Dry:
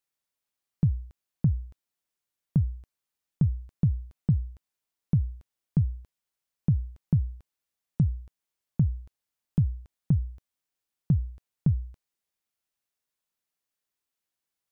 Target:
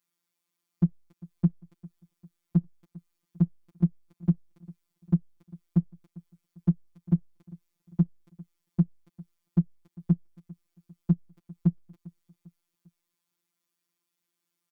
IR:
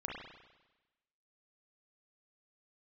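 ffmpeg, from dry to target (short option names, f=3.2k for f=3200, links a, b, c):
-filter_complex "[0:a]highpass=70,equalizer=f=200:t=o:w=1.6:g=9.5,bandreject=f=790:w=12,aecho=1:1:6.7:0.63,acompressor=threshold=-35dB:ratio=1.5,equalizer=f=125:t=o:w=1:g=-10,equalizer=f=250:t=o:w=1:g=5,equalizer=f=500:t=o:w=1:g=-4,asplit=2[a][b];[b]aecho=0:1:399|798|1197:0.0794|0.0365|0.0168[c];[a][c]amix=inputs=2:normalize=0,afftfilt=real='hypot(re,im)*cos(PI*b)':imag='0':win_size=1024:overlap=0.75,volume=5.5dB"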